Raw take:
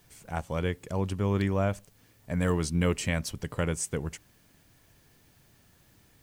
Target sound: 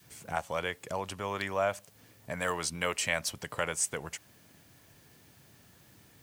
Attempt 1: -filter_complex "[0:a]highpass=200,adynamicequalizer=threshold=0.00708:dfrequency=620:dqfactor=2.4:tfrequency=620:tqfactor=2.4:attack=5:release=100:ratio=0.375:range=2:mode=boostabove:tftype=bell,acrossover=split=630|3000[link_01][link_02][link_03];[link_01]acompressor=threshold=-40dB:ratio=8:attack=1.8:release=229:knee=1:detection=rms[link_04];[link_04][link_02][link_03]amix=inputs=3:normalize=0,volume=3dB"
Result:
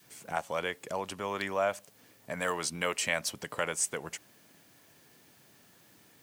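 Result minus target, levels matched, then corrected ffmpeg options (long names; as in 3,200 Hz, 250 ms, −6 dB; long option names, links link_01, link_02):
125 Hz band −3.5 dB
-filter_complex "[0:a]highpass=86,adynamicequalizer=threshold=0.00708:dfrequency=620:dqfactor=2.4:tfrequency=620:tqfactor=2.4:attack=5:release=100:ratio=0.375:range=2:mode=boostabove:tftype=bell,acrossover=split=630|3000[link_01][link_02][link_03];[link_01]acompressor=threshold=-40dB:ratio=8:attack=1.8:release=229:knee=1:detection=rms[link_04];[link_04][link_02][link_03]amix=inputs=3:normalize=0,volume=3dB"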